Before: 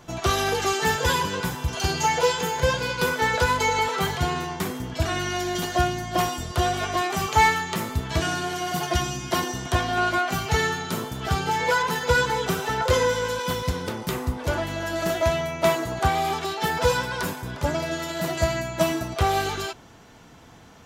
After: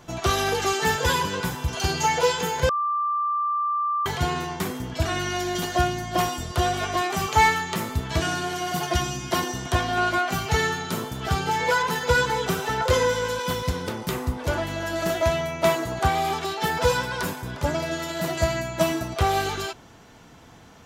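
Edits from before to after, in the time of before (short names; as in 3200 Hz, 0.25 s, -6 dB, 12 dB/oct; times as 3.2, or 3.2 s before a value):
2.69–4.06 bleep 1180 Hz -21.5 dBFS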